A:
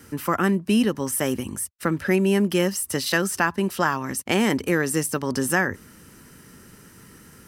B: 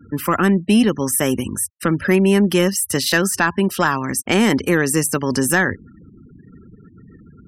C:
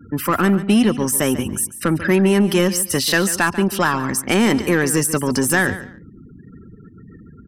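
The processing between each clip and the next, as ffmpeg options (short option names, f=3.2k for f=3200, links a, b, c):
-af "equalizer=f=720:t=o:w=2:g=-2,asoftclip=type=tanh:threshold=-11dB,afftfilt=real='re*gte(hypot(re,im),0.00891)':imag='im*gte(hypot(re,im),0.00891)':win_size=1024:overlap=0.75,volume=7dB"
-filter_complex "[0:a]asplit=2[a][b];[b]asoftclip=type=tanh:threshold=-20.5dB,volume=-3dB[c];[a][c]amix=inputs=2:normalize=0,aecho=1:1:142|284:0.2|0.0439,volume=-2.5dB"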